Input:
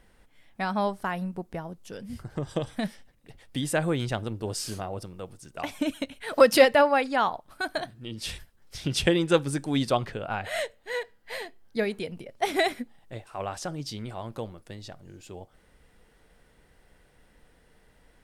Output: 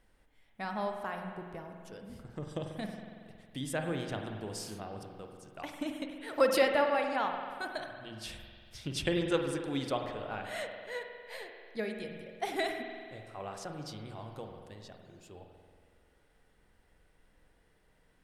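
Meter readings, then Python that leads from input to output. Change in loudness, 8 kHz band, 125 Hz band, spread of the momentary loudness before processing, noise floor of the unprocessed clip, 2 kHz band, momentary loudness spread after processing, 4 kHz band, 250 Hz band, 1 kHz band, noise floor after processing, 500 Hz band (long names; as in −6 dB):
−8.0 dB, −9.0 dB, −9.0 dB, 19 LU, −62 dBFS, −7.5 dB, 19 LU, −8.5 dB, −8.0 dB, −7.5 dB, −68 dBFS, −8.0 dB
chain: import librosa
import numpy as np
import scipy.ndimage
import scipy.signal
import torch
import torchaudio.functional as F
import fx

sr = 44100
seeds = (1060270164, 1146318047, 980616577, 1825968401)

y = fx.hum_notches(x, sr, base_hz=60, count=4)
y = fx.rev_spring(y, sr, rt60_s=2.0, pass_ms=(46,), chirp_ms=65, drr_db=3.5)
y = y * librosa.db_to_amplitude(-9.0)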